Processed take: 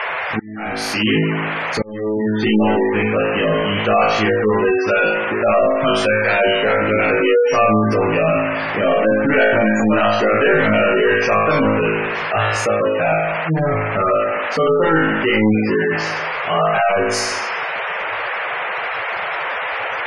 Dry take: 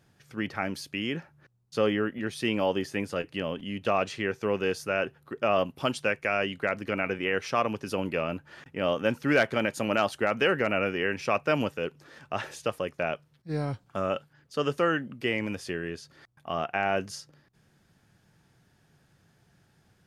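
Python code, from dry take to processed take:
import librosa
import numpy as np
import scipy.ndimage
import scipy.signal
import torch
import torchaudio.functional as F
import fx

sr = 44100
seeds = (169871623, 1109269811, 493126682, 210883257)

p1 = fx.leveller(x, sr, passes=2)
p2 = fx.peak_eq(p1, sr, hz=1200.0, db=-9.5, octaves=2.1, at=(1.18, 1.88), fade=0.02)
p3 = p2 + fx.room_flutter(p2, sr, wall_m=3.2, rt60_s=0.94, dry=0)
p4 = 10.0 ** (-9.0 / 20.0) * np.tanh(p3 / 10.0 ** (-9.0 / 20.0))
p5 = fx.dmg_noise_band(p4, sr, seeds[0], low_hz=470.0, high_hz=2400.0, level_db=-32.0)
p6 = fx.fuzz(p5, sr, gain_db=37.0, gate_db=-41.0)
p7 = p5 + (p6 * 10.0 ** (-10.0 / 20.0))
p8 = fx.auto_swell(p7, sr, attack_ms=647.0)
y = fx.spec_gate(p8, sr, threshold_db=-20, keep='strong')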